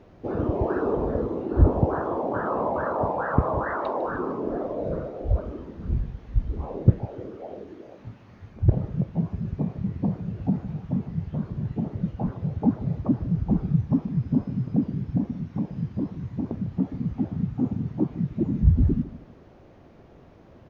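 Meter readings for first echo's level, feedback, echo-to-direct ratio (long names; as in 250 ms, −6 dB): −16.5 dB, 30%, −16.0 dB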